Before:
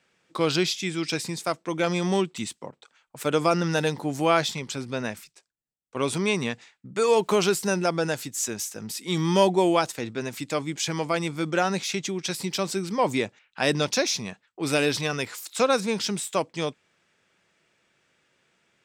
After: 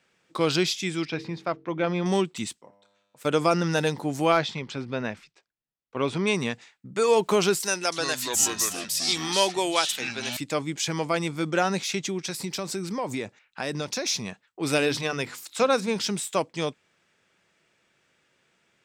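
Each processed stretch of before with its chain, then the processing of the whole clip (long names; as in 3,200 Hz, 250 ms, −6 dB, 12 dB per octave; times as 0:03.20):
0:01.05–0:02.06: high-frequency loss of the air 280 metres + hum removal 46.29 Hz, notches 10
0:02.61–0:03.25: parametric band 67 Hz −10.5 dB 1.9 octaves + tuned comb filter 100 Hz, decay 1.3 s, mix 80%
0:04.32–0:06.27: low-pass filter 3,700 Hz + hard clipping −10 dBFS
0:07.60–0:10.37: high-pass filter 260 Hz + tilt shelving filter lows −7 dB, about 1,400 Hz + delay with pitch and tempo change per echo 320 ms, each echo −6 semitones, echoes 2, each echo −6 dB
0:12.24–0:14.06: parametric band 3,100 Hz −4 dB 0.37 octaves + downward compressor 3 to 1, threshold −27 dBFS
0:14.78–0:15.96: high-shelf EQ 5,400 Hz −4.5 dB + mains-hum notches 50/100/150/200/250/300/350 Hz
whole clip: no processing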